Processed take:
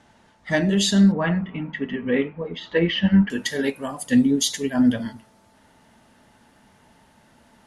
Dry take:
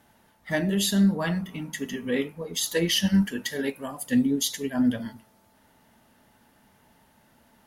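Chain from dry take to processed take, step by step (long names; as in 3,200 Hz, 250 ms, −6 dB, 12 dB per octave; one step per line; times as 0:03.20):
low-pass filter 8,100 Hz 24 dB per octave, from 0:01.12 2,700 Hz, from 0:03.30 10,000 Hz
level +5 dB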